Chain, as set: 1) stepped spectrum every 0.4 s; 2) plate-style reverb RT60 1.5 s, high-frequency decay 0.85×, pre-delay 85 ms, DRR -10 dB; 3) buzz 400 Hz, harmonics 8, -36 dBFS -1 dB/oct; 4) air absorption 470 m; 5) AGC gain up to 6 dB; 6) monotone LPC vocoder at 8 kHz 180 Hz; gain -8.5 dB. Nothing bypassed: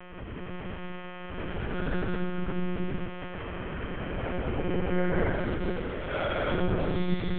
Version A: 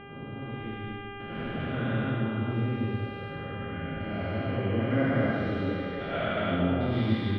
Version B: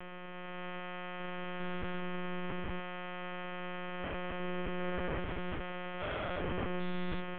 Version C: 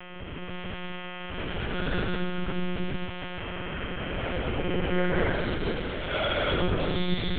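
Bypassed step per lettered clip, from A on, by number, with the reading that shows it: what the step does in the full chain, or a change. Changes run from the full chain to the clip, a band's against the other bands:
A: 6, 125 Hz band +3.0 dB; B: 2, momentary loudness spread change -6 LU; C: 4, 4 kHz band +8.0 dB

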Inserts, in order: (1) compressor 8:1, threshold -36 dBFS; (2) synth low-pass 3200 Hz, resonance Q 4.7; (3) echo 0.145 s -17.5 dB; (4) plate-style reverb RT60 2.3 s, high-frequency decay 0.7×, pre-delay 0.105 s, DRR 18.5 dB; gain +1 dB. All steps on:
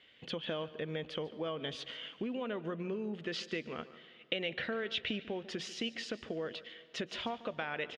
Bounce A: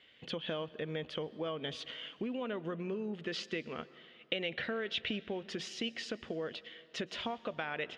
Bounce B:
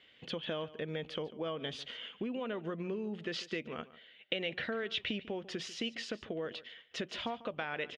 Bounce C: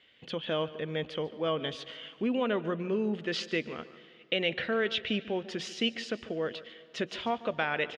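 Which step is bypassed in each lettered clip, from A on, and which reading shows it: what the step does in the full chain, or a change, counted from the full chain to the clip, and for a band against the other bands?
3, echo-to-direct -15.0 dB to -18.5 dB; 4, echo-to-direct -15.0 dB to -17.5 dB; 1, mean gain reduction 4.5 dB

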